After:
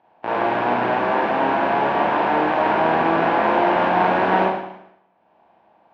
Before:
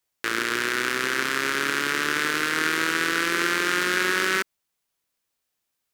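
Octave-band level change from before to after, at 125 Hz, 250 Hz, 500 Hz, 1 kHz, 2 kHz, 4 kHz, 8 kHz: +10.0 dB, +7.0 dB, +11.5 dB, +12.0 dB, -3.0 dB, -8.0 dB, under -25 dB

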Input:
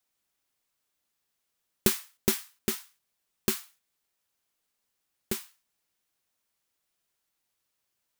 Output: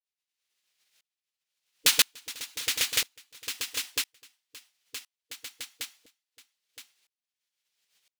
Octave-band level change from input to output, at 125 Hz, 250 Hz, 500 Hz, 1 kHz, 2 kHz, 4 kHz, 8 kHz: -14.0 dB, -16.5 dB, -11.0 dB, +2.5 dB, +9.0 dB, +11.5 dB, +6.0 dB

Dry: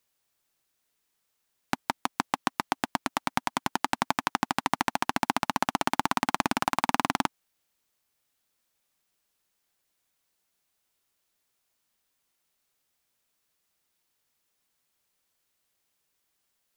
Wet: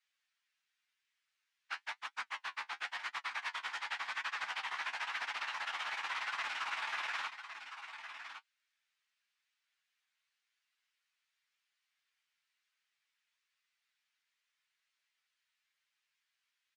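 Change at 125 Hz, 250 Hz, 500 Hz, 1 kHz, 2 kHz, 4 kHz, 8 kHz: under -35 dB, under -35 dB, -21.0 dB, -14.0 dB, -4.5 dB, -6.5 dB, -16.0 dB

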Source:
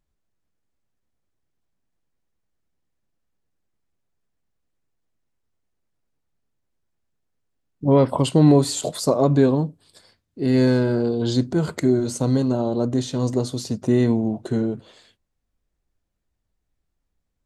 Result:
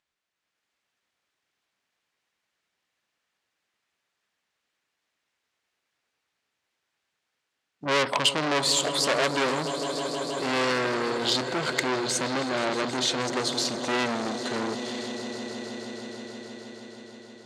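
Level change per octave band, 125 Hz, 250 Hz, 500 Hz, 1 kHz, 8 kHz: -18.0 dB, -11.5 dB, -6.5 dB, +2.5 dB, +3.0 dB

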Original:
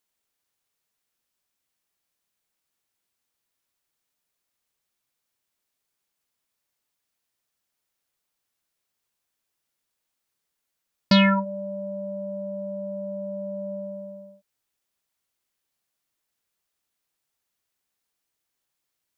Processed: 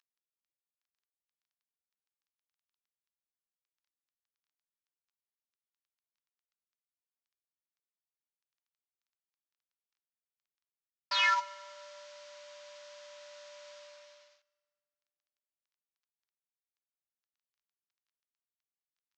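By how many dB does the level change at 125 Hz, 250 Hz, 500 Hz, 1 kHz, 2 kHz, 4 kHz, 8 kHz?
under -40 dB, under -40 dB, -20.0 dB, -4.0 dB, -3.0 dB, -5.5 dB, no reading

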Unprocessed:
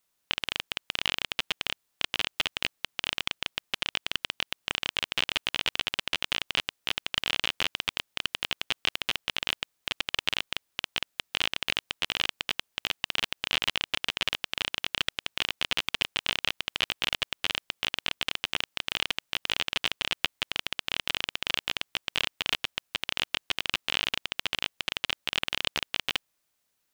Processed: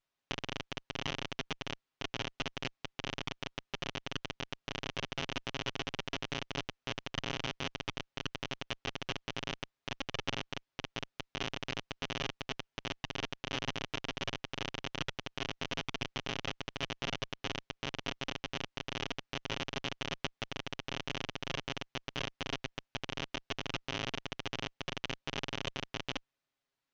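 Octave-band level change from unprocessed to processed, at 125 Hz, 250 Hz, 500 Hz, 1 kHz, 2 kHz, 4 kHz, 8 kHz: +5.5 dB, +3.0 dB, +0.5 dB, -4.0 dB, -9.5 dB, -11.5 dB, -7.5 dB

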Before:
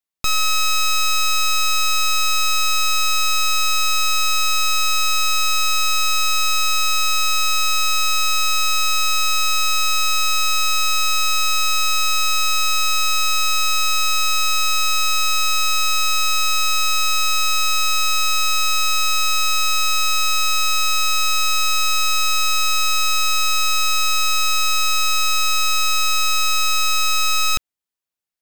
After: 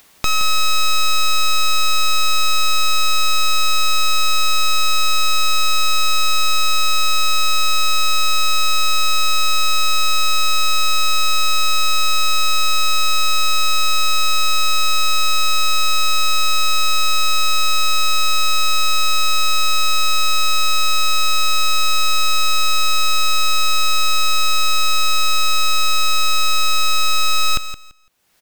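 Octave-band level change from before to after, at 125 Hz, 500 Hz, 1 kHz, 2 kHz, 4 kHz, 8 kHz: +5.0 dB, +4.5 dB, +2.0 dB, -0.5 dB, +2.0 dB, -1.5 dB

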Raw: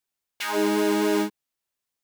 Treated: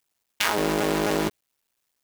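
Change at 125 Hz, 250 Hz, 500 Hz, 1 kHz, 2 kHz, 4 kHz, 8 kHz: no reading, -3.5 dB, -1.5 dB, +2.0 dB, +2.5 dB, +3.5 dB, +3.0 dB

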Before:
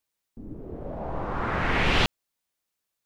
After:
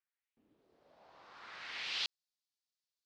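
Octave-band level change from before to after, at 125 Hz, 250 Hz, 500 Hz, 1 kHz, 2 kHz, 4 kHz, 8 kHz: under -40 dB, -36.5 dB, -30.0 dB, -24.0 dB, -16.5 dB, -8.5 dB, -9.5 dB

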